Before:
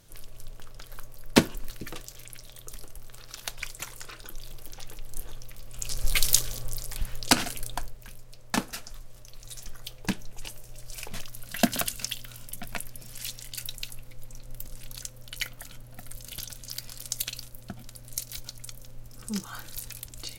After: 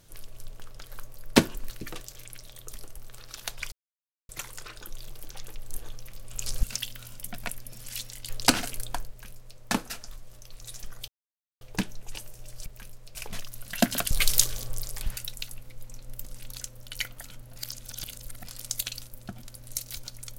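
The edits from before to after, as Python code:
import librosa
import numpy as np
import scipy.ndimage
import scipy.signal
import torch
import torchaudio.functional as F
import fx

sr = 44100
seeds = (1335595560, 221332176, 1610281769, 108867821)

y = fx.edit(x, sr, fx.insert_silence(at_s=3.72, length_s=0.57),
    fx.swap(start_s=6.06, length_s=1.06, other_s=11.92, other_length_s=1.66),
    fx.duplicate(start_s=7.92, length_s=0.49, to_s=10.96),
    fx.insert_silence(at_s=9.91, length_s=0.53),
    fx.reverse_span(start_s=15.97, length_s=0.89), tone=tone)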